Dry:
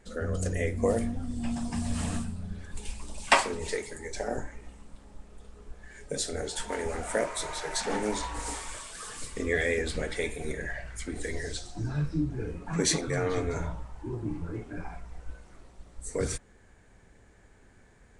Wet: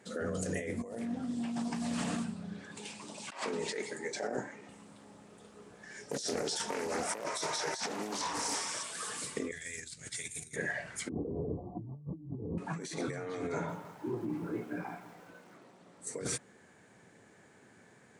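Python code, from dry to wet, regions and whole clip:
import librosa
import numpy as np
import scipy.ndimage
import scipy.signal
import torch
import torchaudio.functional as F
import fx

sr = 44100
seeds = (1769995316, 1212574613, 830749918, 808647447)

y = fx.chain(x, sr, fx.bandpass_edges(low_hz=140.0, high_hz=7300.0),
    fx.doppler_dist(depth_ms=0.14), at=(0.98, 4.69))
y = fx.chain(y, sr, fx.peak_eq(hz=5500.0, db=12.5, octaves=0.32),
    fx.doppler_dist(depth_ms=0.64), at=(5.83, 8.83))
y = fx.chain(y, sr, fx.curve_eq(hz=(110.0, 210.0, 360.0, 510.0, 760.0, 1800.0, 3400.0, 7000.0, 11000.0), db=(0, -16, -20, -26, -21, -11, -6, 7, 3)),
    fx.over_compress(threshold_db=-42.0, ratio=-1.0), at=(9.51, 10.56))
y = fx.chain(y, sr, fx.brickwall_lowpass(high_hz=1200.0),
    fx.tilt_eq(slope=-4.0), at=(11.09, 12.58))
y = fx.chain(y, sr, fx.highpass(hz=150.0, slope=12),
    fx.high_shelf(hz=5100.0, db=-10.0),
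    fx.echo_crushed(ms=164, feedback_pct=55, bits=9, wet_db=-13), at=(13.52, 16.07))
y = scipy.signal.sosfilt(scipy.signal.butter(4, 130.0, 'highpass', fs=sr, output='sos'), y)
y = fx.over_compress(y, sr, threshold_db=-35.0, ratio=-1.0)
y = y * 10.0 ** (-2.5 / 20.0)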